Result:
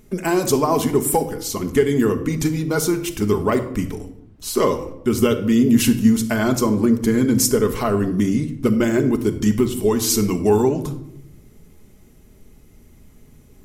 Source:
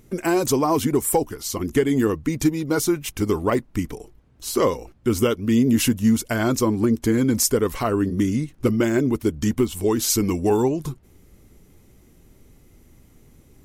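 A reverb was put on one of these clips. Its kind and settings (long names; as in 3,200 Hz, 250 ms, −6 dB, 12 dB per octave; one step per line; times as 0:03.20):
rectangular room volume 2,100 cubic metres, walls furnished, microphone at 1.4 metres
level +1 dB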